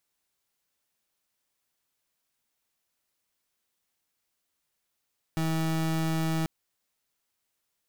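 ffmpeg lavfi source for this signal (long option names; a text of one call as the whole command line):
ffmpeg -f lavfi -i "aevalsrc='0.0422*(2*lt(mod(161*t,1),0.31)-1)':duration=1.09:sample_rate=44100" out.wav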